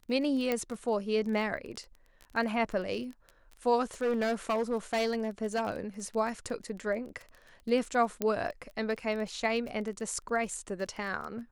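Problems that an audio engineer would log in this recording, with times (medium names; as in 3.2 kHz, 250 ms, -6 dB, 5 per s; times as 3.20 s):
crackle 21 per s -37 dBFS
0.52 s: pop -16 dBFS
4.02–5.80 s: clipped -25 dBFS
8.22 s: pop -15 dBFS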